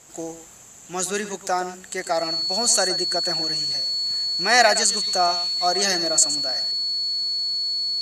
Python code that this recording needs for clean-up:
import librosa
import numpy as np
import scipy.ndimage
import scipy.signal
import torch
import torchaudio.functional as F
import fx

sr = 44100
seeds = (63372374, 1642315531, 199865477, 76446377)

y = fx.notch(x, sr, hz=4400.0, q=30.0)
y = fx.fix_echo_inverse(y, sr, delay_ms=116, level_db=-13.0)